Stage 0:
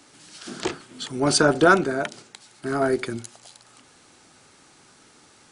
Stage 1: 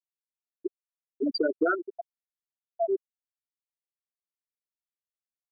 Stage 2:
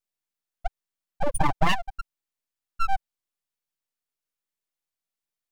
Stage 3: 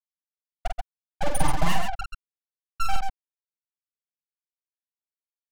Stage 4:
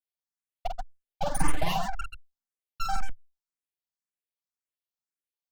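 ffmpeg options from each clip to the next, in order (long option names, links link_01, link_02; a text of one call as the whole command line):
ffmpeg -i in.wav -af "highpass=120,afftfilt=real='re*gte(hypot(re,im),0.708)':imag='im*gte(hypot(re,im),0.708)':win_size=1024:overlap=0.75,acompressor=threshold=-22dB:ratio=6" out.wav
ffmpeg -i in.wav -af "aeval=exprs='abs(val(0))':channel_layout=same,volume=6dB" out.wav
ffmpeg -i in.wav -filter_complex "[0:a]acrossover=split=200[link_01][link_02];[link_02]acompressor=threshold=-26dB:ratio=6[link_03];[link_01][link_03]amix=inputs=2:normalize=0,acrusher=bits=4:mix=0:aa=0.5,asplit=2[link_04][link_05];[link_05]aecho=0:1:47|131|135:0.596|0.299|0.447[link_06];[link_04][link_06]amix=inputs=2:normalize=0" out.wav
ffmpeg -i in.wav -filter_complex "[0:a]asplit=2[link_01][link_02];[link_02]afreqshift=1.9[link_03];[link_01][link_03]amix=inputs=2:normalize=1" out.wav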